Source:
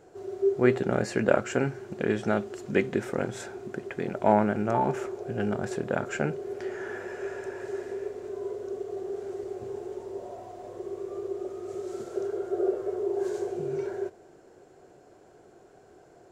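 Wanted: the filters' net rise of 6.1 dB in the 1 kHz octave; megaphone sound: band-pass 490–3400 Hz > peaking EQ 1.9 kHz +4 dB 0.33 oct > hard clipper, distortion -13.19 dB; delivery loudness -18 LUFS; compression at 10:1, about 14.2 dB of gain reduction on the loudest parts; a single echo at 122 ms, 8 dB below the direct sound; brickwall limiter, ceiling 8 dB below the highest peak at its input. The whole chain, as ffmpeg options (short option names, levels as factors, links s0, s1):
-af "equalizer=f=1000:t=o:g=8.5,acompressor=threshold=0.0501:ratio=10,alimiter=limit=0.0944:level=0:latency=1,highpass=490,lowpass=3400,equalizer=f=1900:t=o:w=0.33:g=4,aecho=1:1:122:0.398,asoftclip=type=hard:threshold=0.0251,volume=10.6"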